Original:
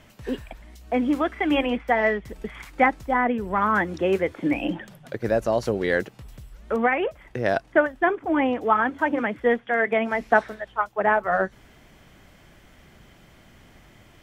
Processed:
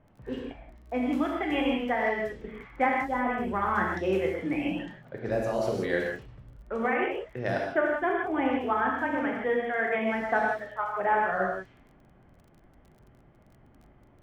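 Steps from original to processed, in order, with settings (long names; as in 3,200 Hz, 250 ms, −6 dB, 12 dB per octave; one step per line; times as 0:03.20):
reverb whose tail is shaped and stops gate 200 ms flat, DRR −1.5 dB
low-pass that shuts in the quiet parts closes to 1,000 Hz, open at −17.5 dBFS
surface crackle 26 per second −40 dBFS
level −8.5 dB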